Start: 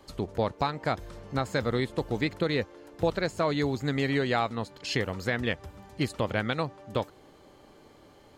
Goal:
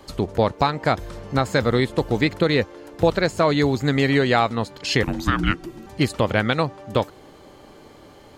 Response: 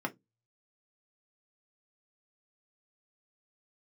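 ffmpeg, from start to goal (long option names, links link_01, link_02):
-filter_complex "[0:a]asettb=1/sr,asplit=3[link_01][link_02][link_03];[link_01]atrim=end=5.034[link_04];[link_02]atrim=start=5.03:end=5.87,asetpts=PTS-STARTPTS,afade=type=in:duration=0.004:curve=qsin,afade=type=out:start_time=0.836:duration=0.004:curve=qsin,afreqshift=-420[link_05];[link_03]atrim=start=5.866[link_06];[link_04][link_05]acrossfade=duration=0.004:curve1=hsin:curve2=qsin[link_07];[link_07][link_06]acrossfade=duration=0.004:curve1=qsin:curve2=hsin,volume=8.5dB"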